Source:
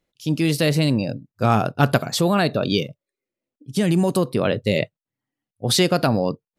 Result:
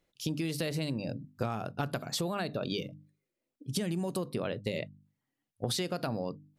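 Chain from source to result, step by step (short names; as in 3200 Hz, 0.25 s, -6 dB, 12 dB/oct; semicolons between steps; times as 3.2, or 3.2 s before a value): notches 50/100/150/200/250/300 Hz; compressor 12:1, threshold -30 dBFS, peak gain reduction 18.5 dB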